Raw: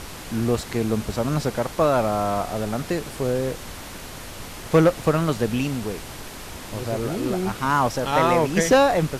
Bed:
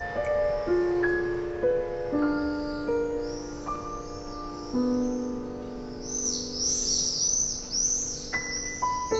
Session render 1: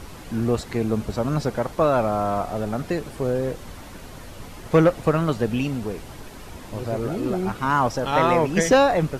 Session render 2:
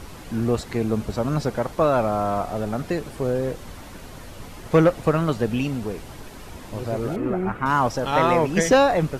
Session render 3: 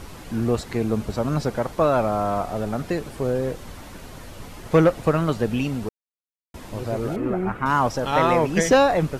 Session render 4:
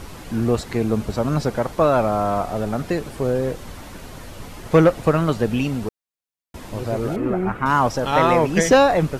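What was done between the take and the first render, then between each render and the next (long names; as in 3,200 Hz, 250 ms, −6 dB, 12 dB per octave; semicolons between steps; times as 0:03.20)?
broadband denoise 8 dB, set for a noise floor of −37 dBFS
0:07.16–0:07.66: high shelf with overshoot 2,900 Hz −13 dB, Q 1.5
0:05.89–0:06.54: silence
level +2.5 dB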